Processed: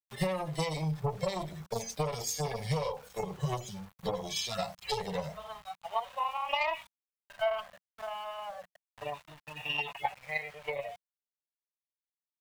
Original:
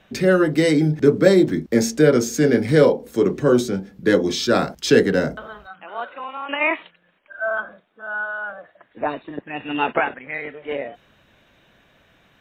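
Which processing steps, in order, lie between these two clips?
harmonic-percussive split with one part muted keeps harmonic
tube saturation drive 12 dB, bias 0.5
spectral tilt +2.5 dB per octave
in parallel at −1 dB: downward compressor, threshold −30 dBFS, peak gain reduction 12.5 dB
on the sum: phaser with its sweep stopped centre 610 Hz, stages 4
hum removal 98.56 Hz, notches 2
centre clipping without the shift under −46 dBFS
brickwall limiter −18.5 dBFS, peak gain reduction 10 dB
transient designer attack +7 dB, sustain +1 dB
drawn EQ curve 180 Hz 0 dB, 340 Hz −18 dB, 1,000 Hz +1 dB, 5,400 Hz −7 dB

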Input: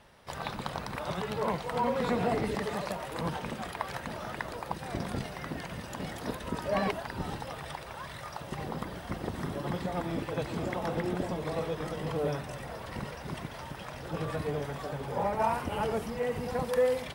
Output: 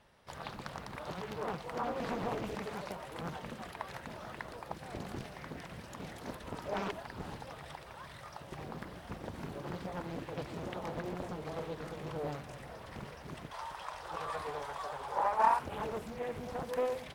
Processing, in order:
0:13.51–0:15.59: octave-band graphic EQ 125/250/1,000/4,000/8,000 Hz −10/−11/+12/+4/+5 dB
highs frequency-modulated by the lows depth 0.96 ms
level −7 dB

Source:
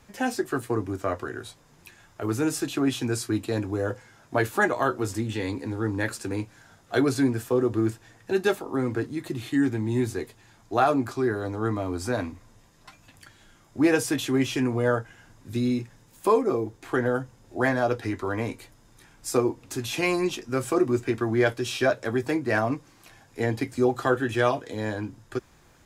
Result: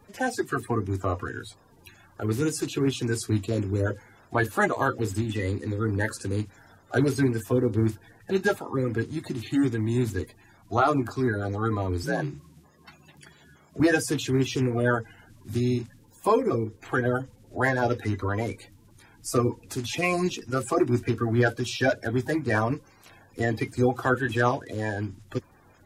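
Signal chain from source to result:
spectral magnitudes quantised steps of 30 dB
parametric band 95 Hz +8.5 dB 0.38 octaves
0:12.03–0:13.80: frequency shifter +53 Hz

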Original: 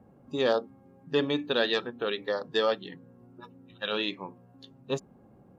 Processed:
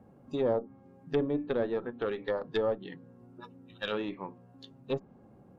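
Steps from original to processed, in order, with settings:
one-sided soft clipper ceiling −22.5 dBFS
treble cut that deepens with the level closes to 800 Hz, closed at −25.5 dBFS

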